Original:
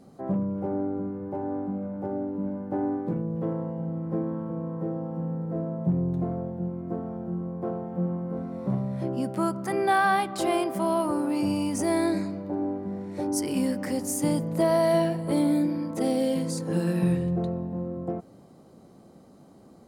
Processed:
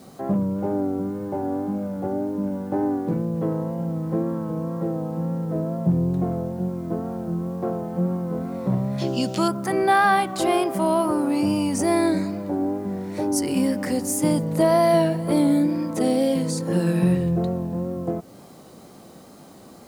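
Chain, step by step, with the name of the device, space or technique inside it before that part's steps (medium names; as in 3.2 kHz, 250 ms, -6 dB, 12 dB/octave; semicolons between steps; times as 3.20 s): noise-reduction cassette on a plain deck (tape noise reduction on one side only encoder only; wow and flutter; white noise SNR 37 dB); 8.98–9.48 s: high-order bell 4.4 kHz +13.5 dB; trim +4.5 dB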